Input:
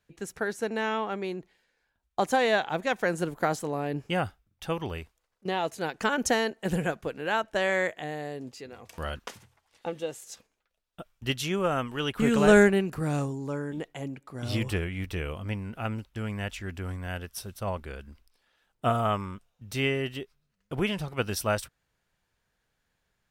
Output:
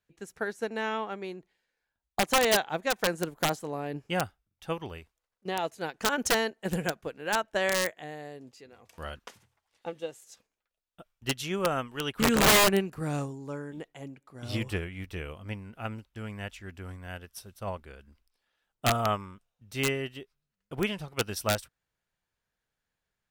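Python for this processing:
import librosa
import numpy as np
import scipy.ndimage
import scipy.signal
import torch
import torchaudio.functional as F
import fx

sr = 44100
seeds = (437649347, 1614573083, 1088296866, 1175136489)

y = fx.low_shelf(x, sr, hz=350.0, db=-2.0)
y = (np.mod(10.0 ** (16.5 / 20.0) * y + 1.0, 2.0) - 1.0) / 10.0 ** (16.5 / 20.0)
y = fx.upward_expand(y, sr, threshold_db=-41.0, expansion=1.5)
y = y * 10.0 ** (2.5 / 20.0)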